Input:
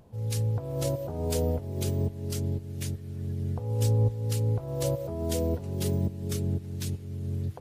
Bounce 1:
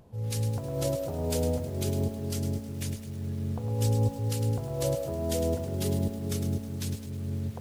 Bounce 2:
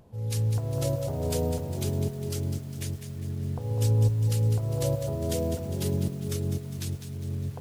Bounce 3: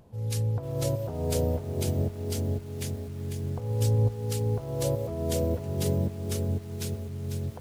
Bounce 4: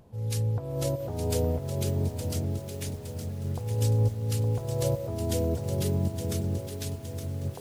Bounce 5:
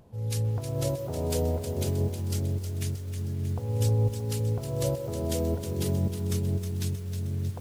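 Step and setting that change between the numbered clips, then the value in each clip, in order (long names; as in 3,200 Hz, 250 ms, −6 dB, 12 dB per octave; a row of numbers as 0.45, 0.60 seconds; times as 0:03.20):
feedback echo at a low word length, delay time: 105, 202, 497, 865, 314 milliseconds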